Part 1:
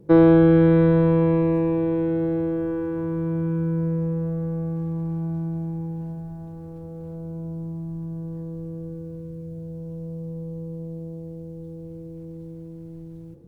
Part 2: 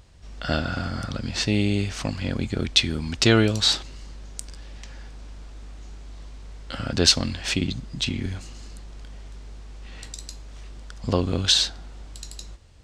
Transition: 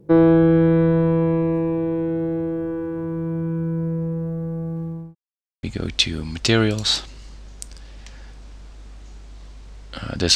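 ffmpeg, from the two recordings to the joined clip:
ffmpeg -i cue0.wav -i cue1.wav -filter_complex "[0:a]apad=whole_dur=10.35,atrim=end=10.35,asplit=2[link_01][link_02];[link_01]atrim=end=5.15,asetpts=PTS-STARTPTS,afade=type=out:start_time=4.74:duration=0.41:curve=qsin[link_03];[link_02]atrim=start=5.15:end=5.63,asetpts=PTS-STARTPTS,volume=0[link_04];[1:a]atrim=start=2.4:end=7.12,asetpts=PTS-STARTPTS,afade=type=in:duration=0.004:curve=hsin[link_05];[link_03][link_04][link_05]concat=n=3:v=0:a=1" out.wav

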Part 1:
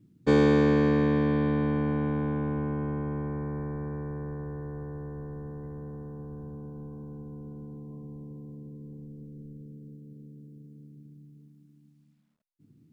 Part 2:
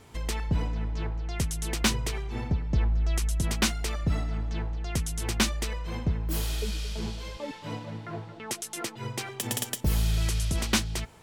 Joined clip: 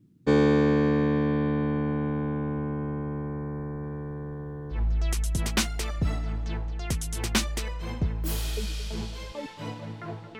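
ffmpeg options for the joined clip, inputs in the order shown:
ffmpeg -i cue0.wav -i cue1.wav -filter_complex "[0:a]asettb=1/sr,asplit=3[link_01][link_02][link_03];[link_01]atrim=end=3.834[link_04];[link_02]atrim=start=3.83:end=4.83,asetpts=PTS-STARTPTS,afade=type=in:duration=0.004:curve=qsin,afade=type=out:start_time=0.996:duration=0.004:curve=qsin,equalizer=frequency=3300:width_type=o:width=0.43:gain=14[link_05];[link_03]atrim=start=4.826[link_06];[link_04][link_05]acrossfade=duration=0.004:curve1=hsin:curve2=qsin[link_07];[link_07][link_06]acrossfade=duration=0.004:curve1=qsin:curve2=hsin,apad=whole_dur=10.39,atrim=end=10.39,atrim=end=4.83,asetpts=PTS-STARTPTS[link_08];[1:a]atrim=start=2.74:end=8.44,asetpts=PTS-STARTPTS[link_09];[link_08][link_09]acrossfade=duration=0.14:curve1=tri:curve2=tri" out.wav

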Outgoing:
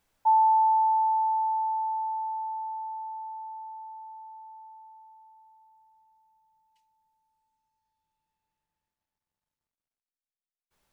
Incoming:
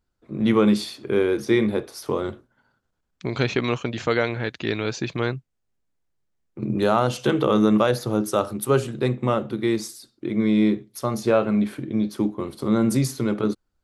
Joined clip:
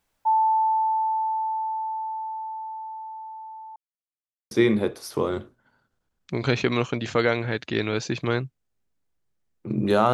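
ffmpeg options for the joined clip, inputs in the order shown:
ffmpeg -i cue0.wav -i cue1.wav -filter_complex "[0:a]apad=whole_dur=10.13,atrim=end=10.13,asplit=2[link_01][link_02];[link_01]atrim=end=3.76,asetpts=PTS-STARTPTS,afade=type=out:start_time=3.756:duration=0.004:curve=hsin[link_03];[link_02]atrim=start=3.76:end=4.51,asetpts=PTS-STARTPTS,volume=0[link_04];[1:a]atrim=start=1.43:end=7.05,asetpts=PTS-STARTPTS,afade=type=in:duration=0.004:curve=hsin[link_05];[link_03][link_04][link_05]concat=n=3:v=0:a=1" out.wav

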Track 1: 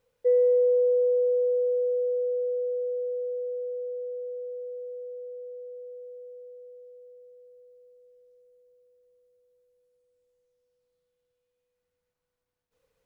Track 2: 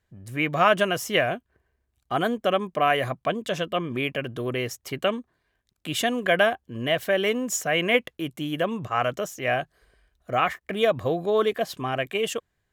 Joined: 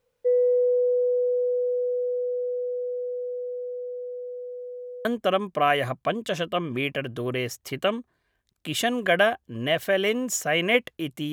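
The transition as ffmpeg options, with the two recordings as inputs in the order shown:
ffmpeg -i cue0.wav -i cue1.wav -filter_complex "[0:a]apad=whole_dur=11.32,atrim=end=11.32,atrim=end=5.052[link_01];[1:a]atrim=start=2.248:end=8.52[link_02];[link_01][link_02]acrossfade=duration=0.004:curve1=hsin:curve2=hsin" out.wav

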